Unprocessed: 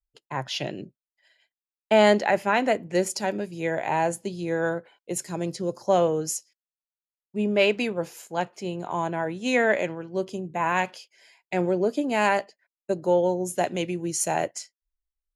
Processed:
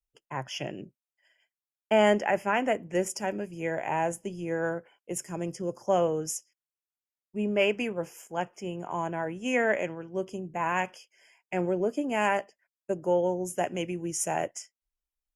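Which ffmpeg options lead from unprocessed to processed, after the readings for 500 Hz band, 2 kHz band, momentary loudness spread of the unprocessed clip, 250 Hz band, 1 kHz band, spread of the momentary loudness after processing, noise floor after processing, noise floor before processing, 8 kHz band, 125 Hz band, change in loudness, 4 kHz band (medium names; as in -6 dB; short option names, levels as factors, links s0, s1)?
-4.0 dB, -4.0 dB, 11 LU, -4.0 dB, -4.0 dB, 11 LU, under -85 dBFS, under -85 dBFS, -4.0 dB, -4.0 dB, -4.0 dB, -6.0 dB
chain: -af "asuperstop=centerf=4000:order=8:qfactor=2.4,volume=0.631" -ar 48000 -c:a libopus -b:a 64k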